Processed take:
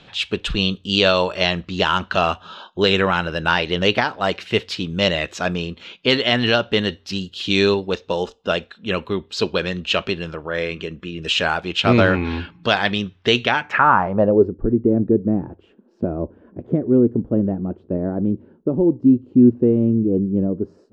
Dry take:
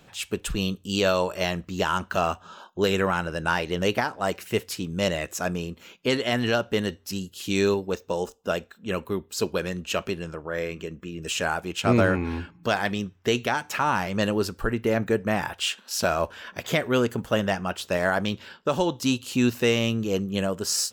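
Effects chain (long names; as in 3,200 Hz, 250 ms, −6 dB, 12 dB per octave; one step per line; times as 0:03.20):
low-pass filter sweep 3,700 Hz → 320 Hz, 0:13.43–0:14.58
level +5 dB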